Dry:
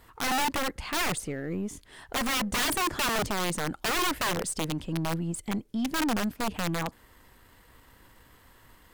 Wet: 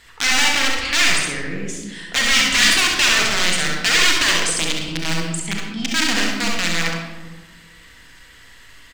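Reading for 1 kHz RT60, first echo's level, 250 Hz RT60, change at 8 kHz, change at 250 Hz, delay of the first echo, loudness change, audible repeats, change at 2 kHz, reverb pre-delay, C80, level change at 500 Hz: 1.3 s, −5.0 dB, 1.8 s, +13.5 dB, +4.0 dB, 67 ms, +12.5 dB, 1, +15.0 dB, 32 ms, 3.5 dB, +4.0 dB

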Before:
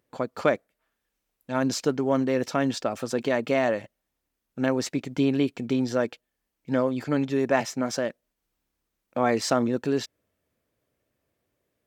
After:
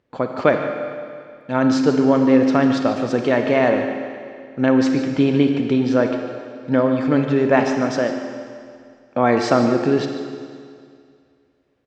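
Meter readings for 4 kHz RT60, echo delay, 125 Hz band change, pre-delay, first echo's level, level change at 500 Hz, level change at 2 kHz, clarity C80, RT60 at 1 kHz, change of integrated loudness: 2.1 s, 148 ms, +8.0 dB, 33 ms, −13.0 dB, +7.5 dB, +7.0 dB, 5.5 dB, 2.2 s, +8.0 dB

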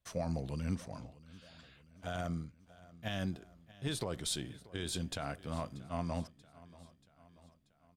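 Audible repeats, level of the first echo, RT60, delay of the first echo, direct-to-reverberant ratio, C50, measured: 3, −20.0 dB, no reverb audible, 634 ms, no reverb audible, no reverb audible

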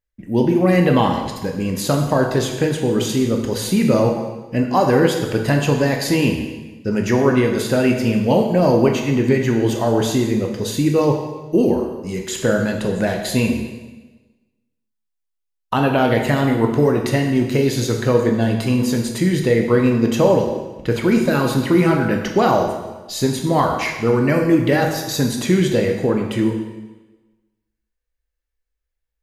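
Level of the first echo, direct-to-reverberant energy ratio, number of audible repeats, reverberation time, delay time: no echo audible, 2.0 dB, no echo audible, 1.2 s, no echo audible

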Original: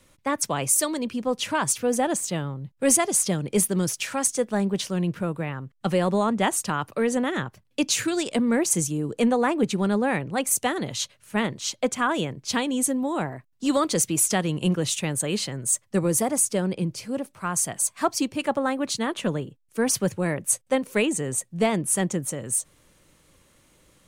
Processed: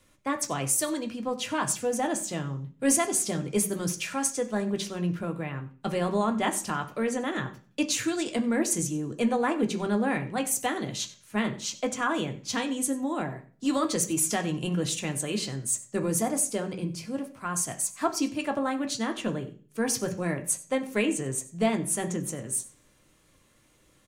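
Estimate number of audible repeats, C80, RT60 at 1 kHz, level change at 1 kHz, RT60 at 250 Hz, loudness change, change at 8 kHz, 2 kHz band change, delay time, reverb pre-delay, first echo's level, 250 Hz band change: 1, 17.0 dB, 0.40 s, −3.5 dB, 0.55 s, −4.0 dB, −4.5 dB, −3.5 dB, 94 ms, 3 ms, −19.5 dB, −3.5 dB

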